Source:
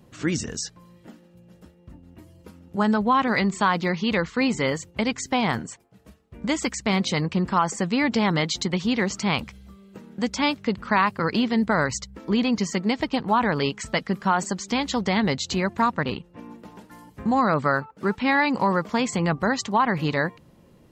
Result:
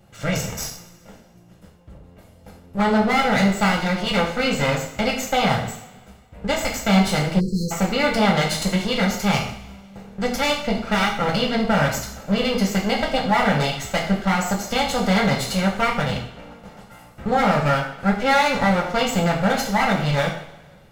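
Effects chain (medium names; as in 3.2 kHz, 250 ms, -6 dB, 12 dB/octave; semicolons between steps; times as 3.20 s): comb filter that takes the minimum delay 1.4 ms; two-slope reverb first 0.56 s, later 1.8 s, DRR -2 dB; spectral selection erased 7.40–7.72 s, 530–4000 Hz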